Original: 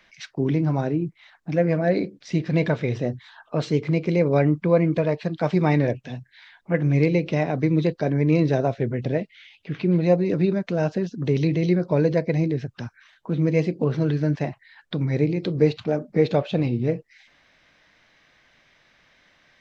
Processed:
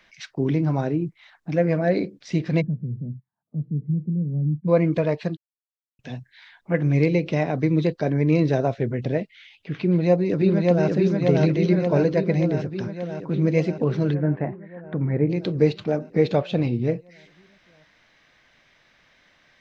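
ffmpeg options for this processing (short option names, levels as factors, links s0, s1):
-filter_complex "[0:a]asplit=3[s0][s1][s2];[s0]afade=t=out:st=2.6:d=0.02[s3];[s1]asuperpass=centerf=160:order=4:qfactor=1.6,afade=t=in:st=2.6:d=0.02,afade=t=out:st=4.67:d=0.02[s4];[s2]afade=t=in:st=4.67:d=0.02[s5];[s3][s4][s5]amix=inputs=3:normalize=0,asplit=2[s6][s7];[s7]afade=t=in:st=9.83:d=0.01,afade=t=out:st=10.88:d=0.01,aecho=0:1:580|1160|1740|2320|2900|3480|4060|4640|5220|5800|6380|6960:0.841395|0.588977|0.412284|0.288599|0.202019|0.141413|0.0989893|0.0692925|0.0485048|0.0339533|0.0237673|0.0166371[s8];[s6][s8]amix=inputs=2:normalize=0,asplit=3[s9][s10][s11];[s9]afade=t=out:st=14.13:d=0.02[s12];[s10]lowpass=f=1900:w=0.5412,lowpass=f=1900:w=1.3066,afade=t=in:st=14.13:d=0.02,afade=t=out:st=15.29:d=0.02[s13];[s11]afade=t=in:st=15.29:d=0.02[s14];[s12][s13][s14]amix=inputs=3:normalize=0,asplit=3[s15][s16][s17];[s15]atrim=end=5.37,asetpts=PTS-STARTPTS,afade=t=out:st=5.366:d=0.004:c=hsin[s18];[s16]atrim=start=5.37:end=5.99,asetpts=PTS-STARTPTS,volume=0[s19];[s17]atrim=start=5.99,asetpts=PTS-STARTPTS,afade=t=in:d=0.004:c=hsin[s20];[s18][s19][s20]concat=n=3:v=0:a=1"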